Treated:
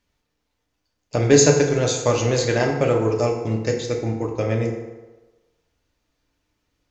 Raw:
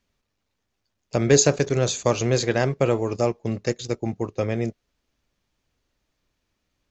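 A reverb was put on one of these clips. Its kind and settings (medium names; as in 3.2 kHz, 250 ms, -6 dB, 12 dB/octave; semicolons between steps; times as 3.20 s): FDN reverb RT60 1.2 s, low-frequency decay 0.75×, high-frequency decay 0.6×, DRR 0.5 dB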